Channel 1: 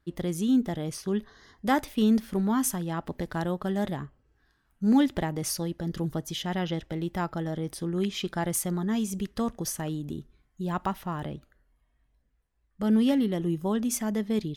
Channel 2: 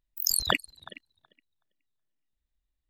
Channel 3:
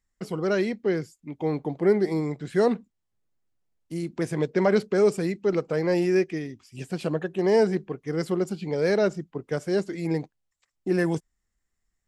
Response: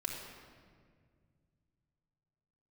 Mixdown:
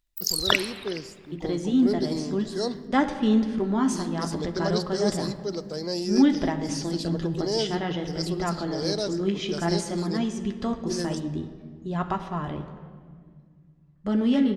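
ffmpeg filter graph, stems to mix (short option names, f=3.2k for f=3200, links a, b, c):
-filter_complex "[0:a]lowpass=f=7.7k:w=0.5412,lowpass=f=7.7k:w=1.3066,flanger=delay=7.2:depth=7.8:regen=-46:speed=0.56:shape=sinusoidal,adelay=1250,volume=2dB,asplit=2[a][b];[b]volume=-3.5dB[c];[1:a]acrossover=split=4600[d][e];[e]acompressor=threshold=-31dB:ratio=4:attack=1:release=60[f];[d][f]amix=inputs=2:normalize=0,highshelf=f=3.2k:g=12,volume=-1dB,asplit=2[g][h];[h]volume=-8.5dB[i];[2:a]highshelf=f=3.2k:t=q:w=3:g=13,acrusher=bits=9:mix=0:aa=0.000001,volume=-8.5dB,asplit=2[j][k];[k]volume=-14dB[l];[3:a]atrim=start_sample=2205[m];[c][i][l]amix=inputs=3:normalize=0[n];[n][m]afir=irnorm=-1:irlink=0[o];[a][g][j][o]amix=inputs=4:normalize=0,highshelf=f=6.9k:g=-7.5"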